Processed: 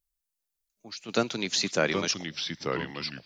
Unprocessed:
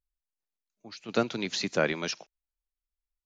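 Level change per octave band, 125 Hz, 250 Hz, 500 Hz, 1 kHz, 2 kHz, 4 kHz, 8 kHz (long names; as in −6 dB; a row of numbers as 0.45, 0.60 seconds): +3.0, +1.5, +1.5, +2.5, +2.5, +6.0, +7.5 decibels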